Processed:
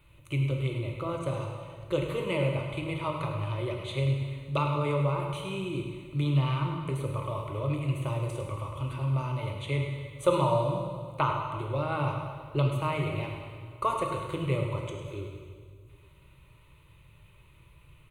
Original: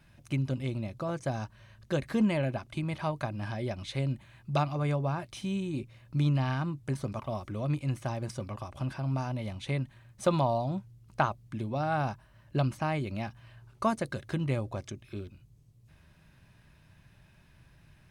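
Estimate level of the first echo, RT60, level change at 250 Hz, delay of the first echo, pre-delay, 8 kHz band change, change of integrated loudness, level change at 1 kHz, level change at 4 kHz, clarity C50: -10.0 dB, 1.9 s, -1.5 dB, 0.103 s, 7 ms, -0.5 dB, +2.0 dB, +2.5 dB, +3.5 dB, 2.5 dB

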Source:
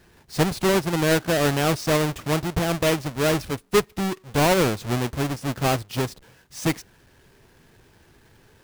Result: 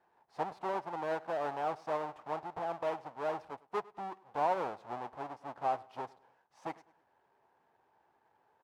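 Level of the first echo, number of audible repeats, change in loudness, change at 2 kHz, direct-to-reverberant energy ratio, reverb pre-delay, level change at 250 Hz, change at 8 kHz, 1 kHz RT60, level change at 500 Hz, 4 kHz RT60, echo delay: -22.0 dB, 2, -14.5 dB, -19.0 dB, none, none, -23.5 dB, under -30 dB, none, -14.0 dB, none, 0.102 s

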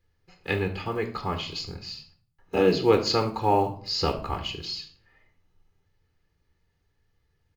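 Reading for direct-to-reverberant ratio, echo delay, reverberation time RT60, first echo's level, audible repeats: 5.5 dB, 73 ms, 0.50 s, -15.0 dB, 1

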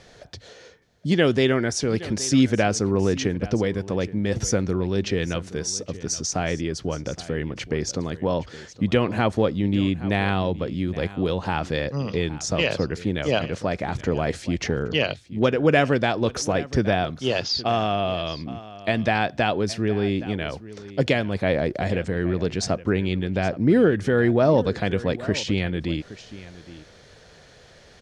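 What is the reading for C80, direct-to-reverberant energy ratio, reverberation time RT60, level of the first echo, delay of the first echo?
none, none, none, -17.0 dB, 0.819 s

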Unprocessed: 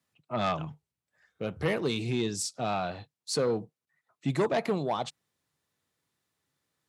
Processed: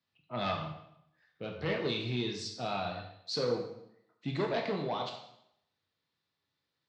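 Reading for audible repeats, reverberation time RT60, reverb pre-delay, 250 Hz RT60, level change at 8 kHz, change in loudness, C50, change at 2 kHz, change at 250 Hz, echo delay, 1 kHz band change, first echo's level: none, 0.75 s, 8 ms, 0.80 s, -13.0 dB, -4.5 dB, 5.5 dB, -2.5 dB, -5.0 dB, none, -4.0 dB, none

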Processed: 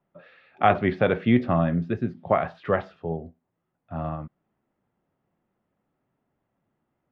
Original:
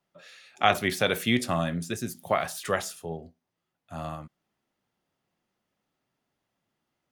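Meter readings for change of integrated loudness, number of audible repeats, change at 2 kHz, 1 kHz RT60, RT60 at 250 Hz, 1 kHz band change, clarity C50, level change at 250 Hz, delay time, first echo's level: +3.0 dB, none, -1.5 dB, none, none, +3.0 dB, none, +6.5 dB, none, none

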